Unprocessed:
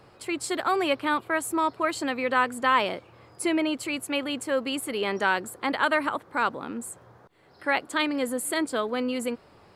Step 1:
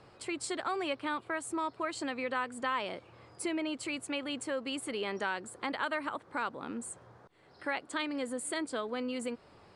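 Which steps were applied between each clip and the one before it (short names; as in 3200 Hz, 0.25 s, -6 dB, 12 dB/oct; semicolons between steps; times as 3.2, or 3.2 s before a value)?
compressor 2:1, threshold -32 dBFS, peak gain reduction 9 dB; elliptic low-pass 9500 Hz, stop band 60 dB; gain -2.5 dB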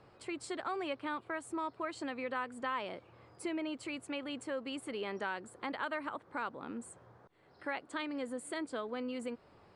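high shelf 3700 Hz -7.5 dB; gain -3 dB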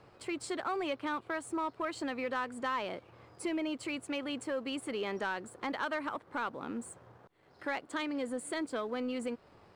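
sample leveller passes 1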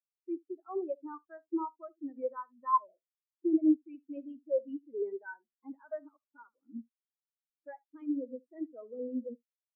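echo 74 ms -7.5 dB; spectral expander 4:1; gain +6 dB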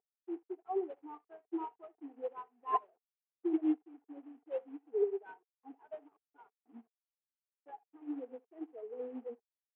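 CVSD 16 kbps; double band-pass 570 Hz, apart 0.73 oct; gain +7 dB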